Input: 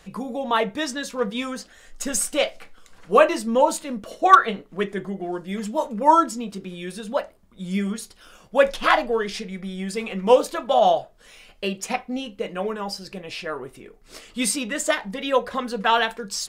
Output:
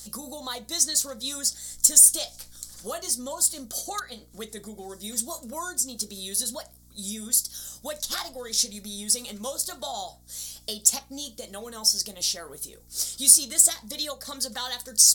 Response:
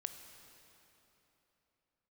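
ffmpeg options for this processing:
-af "acompressor=threshold=-31dB:ratio=2.5,aexciter=amount=9.8:drive=8.7:freq=3.7k,asetrate=48000,aresample=44100,aeval=exprs='val(0)+0.00398*(sin(2*PI*60*n/s)+sin(2*PI*2*60*n/s)/2+sin(2*PI*3*60*n/s)/3+sin(2*PI*4*60*n/s)/4+sin(2*PI*5*60*n/s)/5)':c=same,volume=-7dB"

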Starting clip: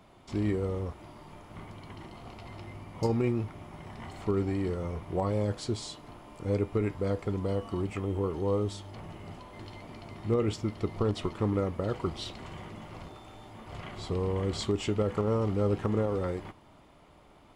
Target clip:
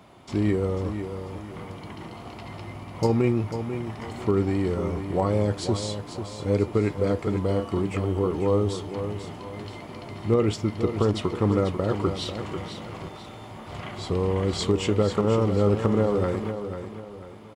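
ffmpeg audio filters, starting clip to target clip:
-af "highpass=68,aecho=1:1:493|986|1479|1972:0.355|0.131|0.0486|0.018,volume=6dB"

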